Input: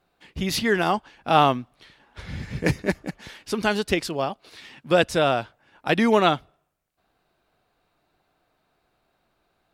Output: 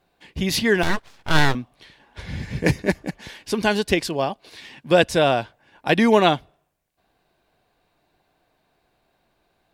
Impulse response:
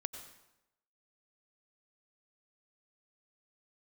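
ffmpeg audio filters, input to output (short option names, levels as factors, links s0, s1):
-filter_complex "[0:a]bandreject=f=1300:w=6.5,asettb=1/sr,asplit=3[s0][s1][s2];[s0]atrim=end=0.834[s3];[s1]atrim=start=0.83:end=1.55,asetpts=PTS-STARTPTS,afade=t=in:d=0.004:c=qsin,afade=t=out:st=0.716:d=0.004:c=qsin,aeval=exprs='abs(val(0))':c=same[s4];[s2]atrim=start=1.546[s5];[s3][s4]acrossfade=d=0.004:c1=hsin:c2=qsin[s6];[s6][s5]acrossfade=d=0.004:c1=qsin:c2=hsin,volume=1.41"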